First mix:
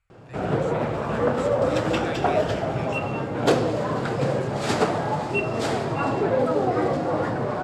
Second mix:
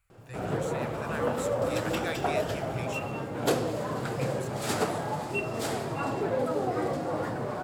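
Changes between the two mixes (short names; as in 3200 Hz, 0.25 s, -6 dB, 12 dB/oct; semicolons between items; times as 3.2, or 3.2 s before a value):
background -7.0 dB; master: remove air absorption 73 m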